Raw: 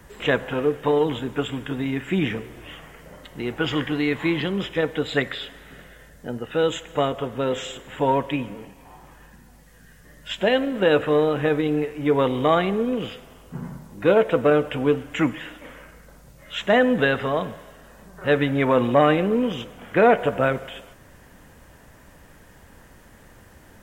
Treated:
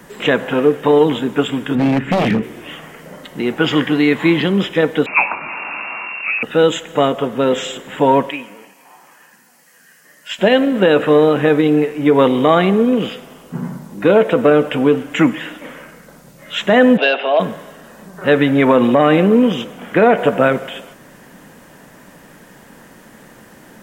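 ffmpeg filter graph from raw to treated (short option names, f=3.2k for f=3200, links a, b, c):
-filter_complex "[0:a]asettb=1/sr,asplit=3[a][b][c];[a]atrim=end=1.754[d];[b]atrim=start=1.75:end=2.43,asetpts=PTS-STARTPTS,afade=t=in:d=0.004:c=qsin,afade=t=out:st=0.676:d=0.004:c=qsin,bass=f=250:g=11,treble=f=4k:g=-11,aeval=exprs='0.141*(abs(mod(val(0)/0.141+3,4)-2)-1)':c=same[e];[c]atrim=start=2.426[f];[d][e]acrossfade=d=0.004:c1=hsin:c2=qsin[g];[g][f]acrossfade=d=0.004:c1=qsin:c2=hsin,asettb=1/sr,asplit=3[h][i][j];[h]atrim=end=5.064[k];[i]atrim=start=5.06:end=6.43,asetpts=PTS-STARTPTS,afade=t=in:d=0.004:c=qsin,afade=t=out:st=1.366:d=0.004:c=qsin,aeval=exprs='val(0)+0.5*0.0299*sgn(val(0))':c=same,asplit=2[l][m];[m]adelay=22,volume=-13.5dB[n];[l][n]amix=inputs=2:normalize=0,atrim=end_sample=60417,lowpass=f=2.4k:t=q:w=0.5098,lowpass=f=2.4k:t=q:w=0.6013,lowpass=f=2.4k:t=q:w=0.9,lowpass=f=2.4k:t=q:w=2.563,afreqshift=-2800[o];[j]atrim=start=6.426[p];[k][o]acrossfade=d=0.004:c1=hsin:c2=qsin[q];[q][p]acrossfade=d=0.004:c1=qsin:c2=hsin,asettb=1/sr,asplit=3[r][s][t];[r]atrim=end=8.304[u];[s]atrim=start=8.3:end=10.39,asetpts=PTS-STARTPTS,afade=t=in:d=0.004:c=qsin,afade=t=out:st=2.086:d=0.004:c=qsin,highpass=f=1.4k:p=1,equalizer=f=3.6k:w=6.9:g=-10.5[v];[t]atrim=start=10.386[w];[u][v]acrossfade=d=0.004:c1=hsin:c2=qsin[x];[x][w]acrossfade=d=0.004:c1=qsin:c2=hsin,asettb=1/sr,asplit=3[y][z][aa];[y]atrim=end=16.974[ab];[z]atrim=start=16.97:end=17.4,asetpts=PTS-STARTPTS,afade=t=in:d=0.004:c=qsin,afade=t=out:st=0.426:d=0.004:c=qsin,asoftclip=type=hard:threshold=-14dB,highpass=f=390:w=0.5412,highpass=f=390:w=1.3066,equalizer=f=460:t=q:w=4:g=-8,equalizer=f=660:t=q:w=4:g=8,equalizer=f=1.2k:t=q:w=4:g=-9,equalizer=f=1.9k:t=q:w=4:g=-9,equalizer=f=2.7k:t=q:w=4:g=9,lowpass=f=4.1k:w=0.5412,lowpass=f=4.1k:w=1.3066[ac];[aa]atrim=start=17.396[ad];[ab][ac]acrossfade=d=0.004:c1=hsin:c2=qsin[ae];[ae][ad]acrossfade=d=0.004:c1=qsin:c2=hsin,lowshelf=f=120:t=q:w=1.5:g=-13.5,alimiter=level_in=9dB:limit=-1dB:release=50:level=0:latency=1,volume=-1dB"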